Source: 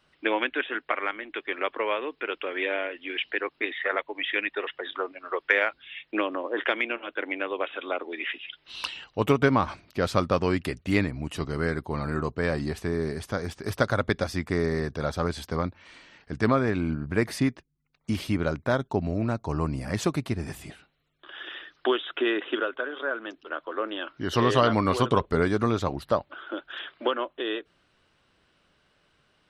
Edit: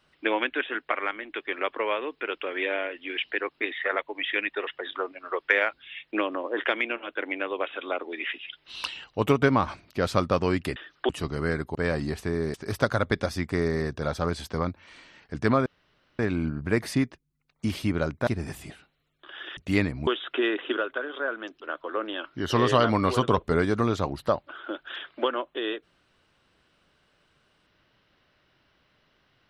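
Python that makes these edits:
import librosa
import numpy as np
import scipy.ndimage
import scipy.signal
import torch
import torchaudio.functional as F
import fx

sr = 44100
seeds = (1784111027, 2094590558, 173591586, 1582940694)

y = fx.edit(x, sr, fx.swap(start_s=10.76, length_s=0.5, other_s=21.57, other_length_s=0.33),
    fx.cut(start_s=11.92, length_s=0.42),
    fx.cut(start_s=13.13, length_s=0.39),
    fx.insert_room_tone(at_s=16.64, length_s=0.53),
    fx.cut(start_s=18.72, length_s=1.55), tone=tone)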